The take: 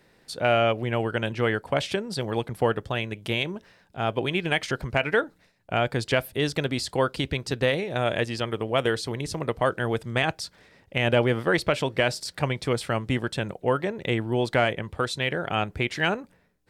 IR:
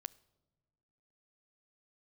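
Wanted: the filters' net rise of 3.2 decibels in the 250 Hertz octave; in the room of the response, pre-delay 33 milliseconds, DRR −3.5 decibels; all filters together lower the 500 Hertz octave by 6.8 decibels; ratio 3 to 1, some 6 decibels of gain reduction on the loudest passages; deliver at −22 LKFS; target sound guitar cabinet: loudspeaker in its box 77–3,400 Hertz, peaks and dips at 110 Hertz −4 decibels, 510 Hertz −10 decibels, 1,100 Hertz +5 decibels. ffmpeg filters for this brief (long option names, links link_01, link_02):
-filter_complex "[0:a]equalizer=frequency=250:width_type=o:gain=6.5,equalizer=frequency=500:width_type=o:gain=-6,acompressor=threshold=-26dB:ratio=3,asplit=2[link_01][link_02];[1:a]atrim=start_sample=2205,adelay=33[link_03];[link_02][link_03]afir=irnorm=-1:irlink=0,volume=7.5dB[link_04];[link_01][link_04]amix=inputs=2:normalize=0,highpass=77,equalizer=frequency=110:width_type=q:width=4:gain=-4,equalizer=frequency=510:width_type=q:width=4:gain=-10,equalizer=frequency=1100:width_type=q:width=4:gain=5,lowpass=frequency=3400:width=0.5412,lowpass=frequency=3400:width=1.3066,volume=5dB"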